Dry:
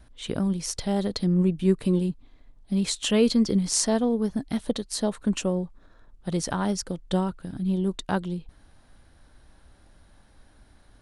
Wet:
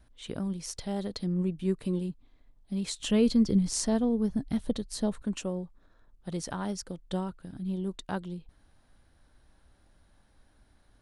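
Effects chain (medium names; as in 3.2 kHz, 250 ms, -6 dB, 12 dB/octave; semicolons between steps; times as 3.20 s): 3.00–5.22 s: bass shelf 220 Hz +11.5 dB; trim -7.5 dB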